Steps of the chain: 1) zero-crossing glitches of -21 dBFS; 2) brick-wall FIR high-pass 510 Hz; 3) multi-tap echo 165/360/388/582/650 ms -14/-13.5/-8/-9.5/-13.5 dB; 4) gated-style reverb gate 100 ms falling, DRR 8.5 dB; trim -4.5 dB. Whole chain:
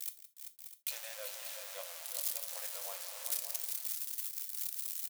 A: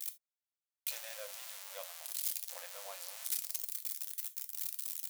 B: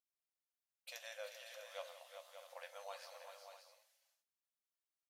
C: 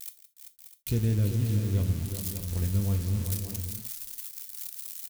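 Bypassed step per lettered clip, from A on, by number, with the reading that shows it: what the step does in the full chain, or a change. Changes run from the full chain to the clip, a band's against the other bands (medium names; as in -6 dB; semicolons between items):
3, echo-to-direct -2.0 dB to -8.5 dB; 1, distortion -11 dB; 2, 500 Hz band +10.5 dB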